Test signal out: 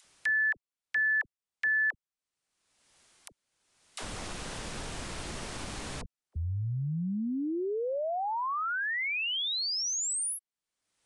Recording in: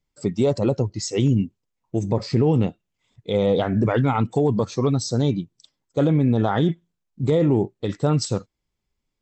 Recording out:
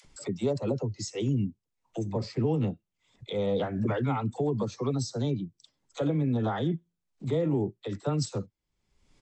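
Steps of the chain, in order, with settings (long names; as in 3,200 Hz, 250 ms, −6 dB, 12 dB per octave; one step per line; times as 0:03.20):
all-pass dispersion lows, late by 47 ms, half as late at 490 Hz
downsampling to 22,050 Hz
upward compression, threshold −27 dBFS
level −8.5 dB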